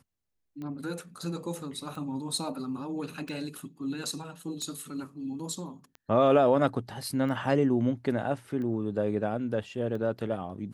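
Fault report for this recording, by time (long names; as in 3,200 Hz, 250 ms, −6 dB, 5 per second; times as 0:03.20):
scratch tick 45 rpm −29 dBFS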